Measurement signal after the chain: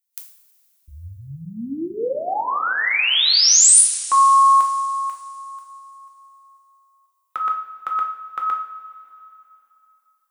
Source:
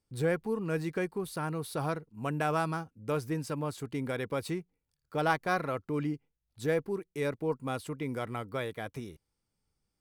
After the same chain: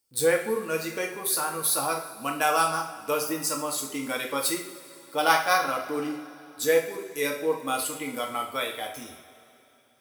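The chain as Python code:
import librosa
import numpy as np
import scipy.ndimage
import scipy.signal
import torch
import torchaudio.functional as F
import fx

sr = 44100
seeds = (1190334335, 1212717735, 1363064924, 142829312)

y = fx.noise_reduce_blind(x, sr, reduce_db=7)
y = fx.riaa(y, sr, side='recording')
y = fx.rev_double_slope(y, sr, seeds[0], early_s=0.51, late_s=3.1, knee_db=-17, drr_db=0.5)
y = y * librosa.db_to_amplitude(5.5)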